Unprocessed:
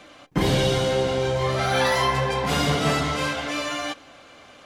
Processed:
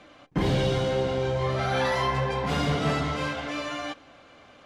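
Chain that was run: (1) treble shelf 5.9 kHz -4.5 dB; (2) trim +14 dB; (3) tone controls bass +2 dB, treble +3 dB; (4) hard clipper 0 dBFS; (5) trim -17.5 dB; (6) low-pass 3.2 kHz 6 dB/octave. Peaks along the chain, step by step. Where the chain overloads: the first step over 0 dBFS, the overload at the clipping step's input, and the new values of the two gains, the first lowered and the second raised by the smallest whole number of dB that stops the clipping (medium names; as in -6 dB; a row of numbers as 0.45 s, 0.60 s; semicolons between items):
-9.5 dBFS, +4.5 dBFS, +5.0 dBFS, 0.0 dBFS, -17.5 dBFS, -17.5 dBFS; step 2, 5.0 dB; step 2 +9 dB, step 5 -12.5 dB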